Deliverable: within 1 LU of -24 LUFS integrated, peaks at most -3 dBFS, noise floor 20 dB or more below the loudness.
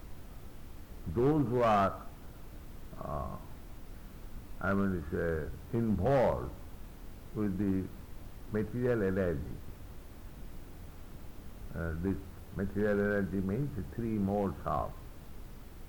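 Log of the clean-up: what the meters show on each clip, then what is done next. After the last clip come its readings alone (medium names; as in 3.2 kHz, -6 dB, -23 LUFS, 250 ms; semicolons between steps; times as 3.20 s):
clipped samples 0.7%; clipping level -22.5 dBFS; noise floor -50 dBFS; noise floor target -54 dBFS; loudness -33.5 LUFS; peak level -22.5 dBFS; loudness target -24.0 LUFS
-> clip repair -22.5 dBFS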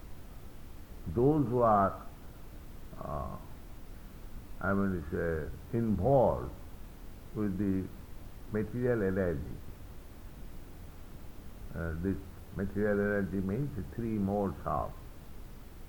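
clipped samples 0.0%; noise floor -50 dBFS; noise floor target -53 dBFS
-> noise print and reduce 6 dB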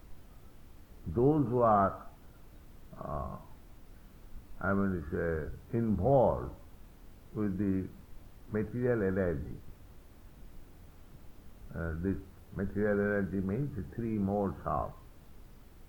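noise floor -55 dBFS; loudness -32.5 LUFS; peak level -14.5 dBFS; loudness target -24.0 LUFS
-> trim +8.5 dB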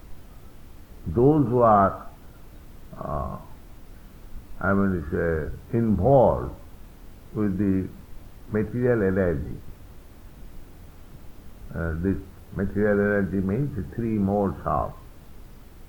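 loudness -24.0 LUFS; peak level -6.0 dBFS; noise floor -47 dBFS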